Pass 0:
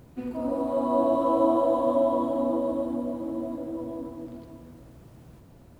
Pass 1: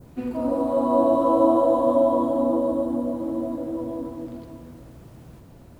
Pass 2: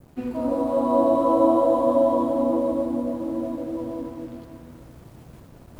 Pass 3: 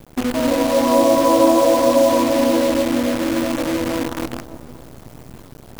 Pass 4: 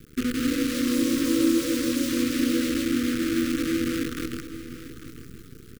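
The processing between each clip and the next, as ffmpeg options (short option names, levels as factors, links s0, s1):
-af "adynamicequalizer=threshold=0.00447:dfrequency=2600:dqfactor=0.88:tfrequency=2600:tqfactor=0.88:attack=5:release=100:ratio=0.375:range=3:mode=cutabove:tftype=bell,volume=1.68"
-af "areverse,acompressor=mode=upward:threshold=0.0141:ratio=2.5,areverse,aeval=exprs='sgn(val(0))*max(abs(val(0))-0.00266,0)':c=same"
-filter_complex "[0:a]asplit=2[s0][s1];[s1]acompressor=threshold=0.0355:ratio=5,volume=1.26[s2];[s0][s2]amix=inputs=2:normalize=0,acrusher=bits=5:dc=4:mix=0:aa=0.000001,volume=1.33"
-af "asuperstop=centerf=760:order=12:qfactor=1,aecho=1:1:846:0.211,volume=0.596"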